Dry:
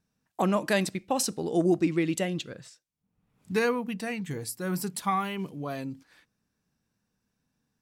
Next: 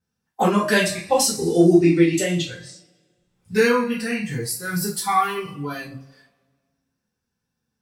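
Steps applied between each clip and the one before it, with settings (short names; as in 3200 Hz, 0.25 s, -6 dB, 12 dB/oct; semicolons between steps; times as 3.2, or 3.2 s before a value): two-slope reverb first 0.32 s, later 1.6 s, from -18 dB, DRR -9 dB; spectral noise reduction 10 dB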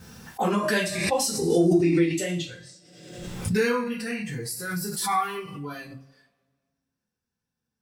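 backwards sustainer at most 47 dB/s; gain -6.5 dB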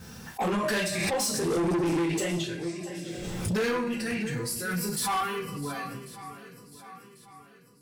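swung echo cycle 1.094 s, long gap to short 1.5:1, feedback 37%, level -16 dB; soft clip -25 dBFS, distortion -8 dB; gain +1.5 dB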